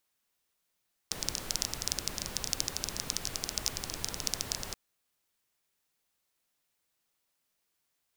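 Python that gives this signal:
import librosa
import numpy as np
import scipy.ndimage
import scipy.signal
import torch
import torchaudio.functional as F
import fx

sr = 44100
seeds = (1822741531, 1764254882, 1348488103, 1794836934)

y = fx.rain(sr, seeds[0], length_s=3.63, drops_per_s=15.0, hz=5500.0, bed_db=-4.0)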